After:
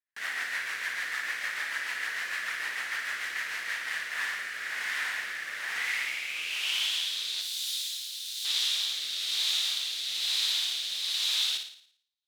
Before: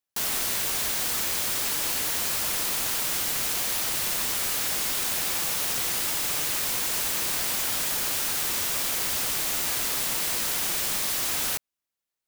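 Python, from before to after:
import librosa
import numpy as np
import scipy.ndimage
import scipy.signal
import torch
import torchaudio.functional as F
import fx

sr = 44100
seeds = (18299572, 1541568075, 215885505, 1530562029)

p1 = fx.filter_sweep_bandpass(x, sr, from_hz=1800.0, to_hz=3700.0, start_s=5.69, end_s=7.17, q=5.3)
p2 = fx.rotary_switch(p1, sr, hz=6.7, then_hz=1.1, switch_at_s=3.48)
p3 = np.sign(p2) * np.maximum(np.abs(p2) - 10.0 ** (-56.5 / 20.0), 0.0)
p4 = p2 + (p3 * librosa.db_to_amplitude(-4.5))
p5 = fx.pre_emphasis(p4, sr, coefficient=0.97, at=(7.41, 8.45))
p6 = p5 + fx.room_flutter(p5, sr, wall_m=9.7, rt60_s=0.57, dry=0)
y = p6 * librosa.db_to_amplitude(8.0)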